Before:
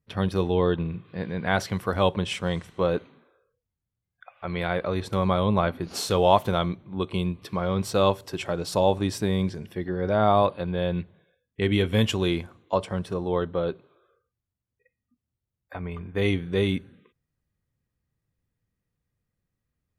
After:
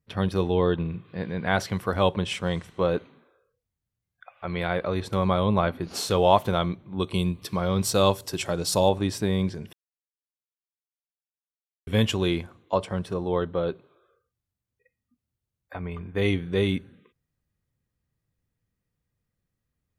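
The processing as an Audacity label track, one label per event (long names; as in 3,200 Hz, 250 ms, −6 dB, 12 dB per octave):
6.980000	8.890000	bass and treble bass +2 dB, treble +10 dB
9.730000	11.870000	silence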